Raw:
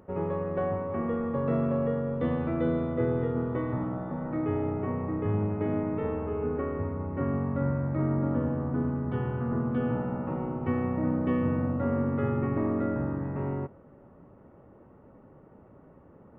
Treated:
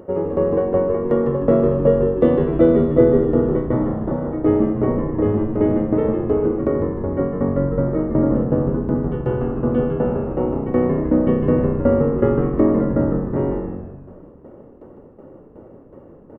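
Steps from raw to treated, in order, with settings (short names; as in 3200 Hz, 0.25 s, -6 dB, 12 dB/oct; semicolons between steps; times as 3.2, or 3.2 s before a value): notch 2600 Hz, Q 6.7; small resonant body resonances 350/510/2800 Hz, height 10 dB, ringing for 20 ms; tremolo saw down 2.7 Hz, depth 90%; frequency-shifting echo 0.153 s, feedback 49%, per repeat -93 Hz, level -5.5 dB; gain +7.5 dB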